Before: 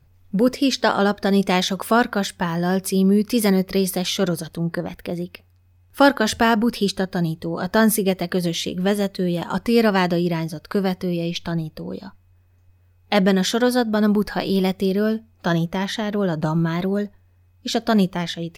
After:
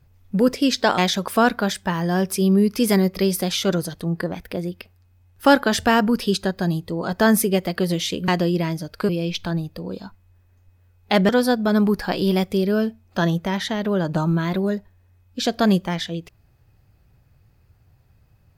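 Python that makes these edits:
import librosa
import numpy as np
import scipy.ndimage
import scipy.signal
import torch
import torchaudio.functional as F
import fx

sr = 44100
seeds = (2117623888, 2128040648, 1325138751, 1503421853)

y = fx.edit(x, sr, fx.cut(start_s=0.98, length_s=0.54),
    fx.cut(start_s=8.82, length_s=1.17),
    fx.cut(start_s=10.8, length_s=0.3),
    fx.cut(start_s=13.3, length_s=0.27), tone=tone)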